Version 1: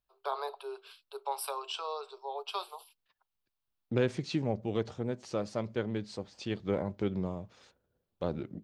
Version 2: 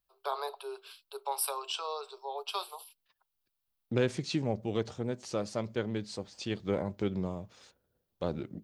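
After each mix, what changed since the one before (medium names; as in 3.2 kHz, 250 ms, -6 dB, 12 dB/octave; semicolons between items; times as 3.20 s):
master: add treble shelf 5.4 kHz +9.5 dB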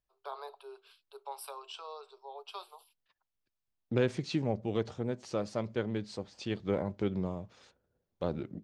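first voice -7.5 dB; master: add treble shelf 5.4 kHz -9.5 dB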